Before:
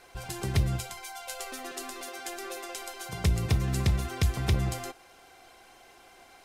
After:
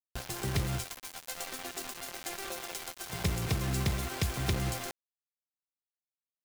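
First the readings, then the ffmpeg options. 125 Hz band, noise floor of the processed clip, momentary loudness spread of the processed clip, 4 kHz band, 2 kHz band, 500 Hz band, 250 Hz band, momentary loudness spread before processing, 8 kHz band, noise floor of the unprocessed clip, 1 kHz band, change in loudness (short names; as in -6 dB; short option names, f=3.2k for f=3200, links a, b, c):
-5.5 dB, under -85 dBFS, 9 LU, 0.0 dB, -1.0 dB, -2.5 dB, -2.5 dB, 12 LU, 0.0 dB, -56 dBFS, -2.0 dB, -3.5 dB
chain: -filter_complex "[0:a]acrossover=split=170|3000[a][b][c];[a]acompressor=threshold=-28dB:ratio=6[d];[d][b][c]amix=inputs=3:normalize=0,acrusher=bits=5:mix=0:aa=0.000001,volume=-2dB"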